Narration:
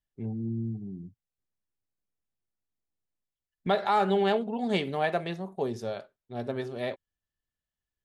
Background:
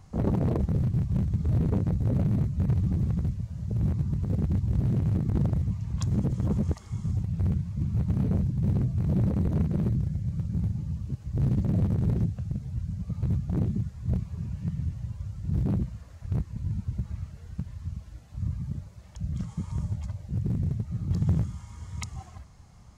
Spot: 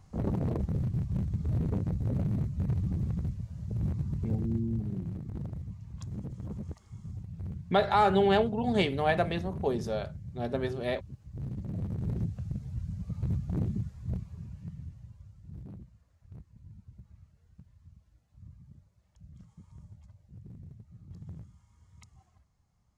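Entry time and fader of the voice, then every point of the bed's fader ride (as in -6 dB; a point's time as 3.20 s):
4.05 s, +1.0 dB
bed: 4.26 s -5 dB
4.71 s -12.5 dB
11.55 s -12.5 dB
12.41 s -4 dB
13.78 s -4 dB
15.83 s -20 dB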